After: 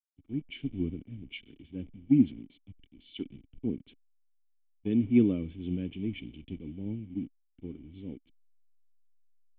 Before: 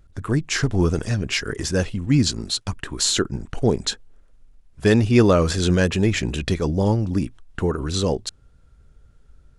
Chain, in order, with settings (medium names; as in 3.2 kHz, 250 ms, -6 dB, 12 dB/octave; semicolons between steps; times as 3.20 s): send-on-delta sampling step -26 dBFS; cascade formant filter i; three bands expanded up and down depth 100%; trim -7 dB